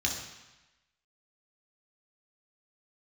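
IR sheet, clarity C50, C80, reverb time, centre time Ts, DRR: 4.5 dB, 7.0 dB, 1.0 s, 39 ms, −1.0 dB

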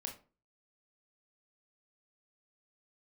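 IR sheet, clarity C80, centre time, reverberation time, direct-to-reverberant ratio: 16.0 dB, 17 ms, 0.35 s, 2.0 dB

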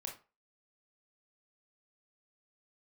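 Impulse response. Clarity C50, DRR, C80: 8.5 dB, 0.5 dB, 15.5 dB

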